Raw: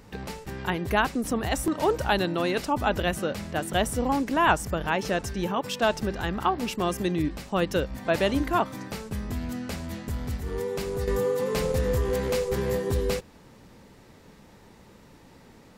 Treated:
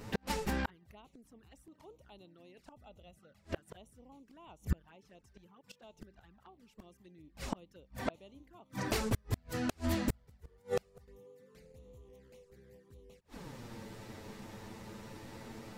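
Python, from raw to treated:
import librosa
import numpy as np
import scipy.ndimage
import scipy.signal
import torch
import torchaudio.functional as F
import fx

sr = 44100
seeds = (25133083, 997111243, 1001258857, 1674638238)

y = fx.comb(x, sr, ms=1.5, depth=0.39, at=(2.72, 3.39))
y = fx.env_flanger(y, sr, rest_ms=10.7, full_db=-21.5)
y = fx.gate_flip(y, sr, shuts_db=-26.0, range_db=-37)
y = F.gain(torch.from_numpy(y), 6.5).numpy()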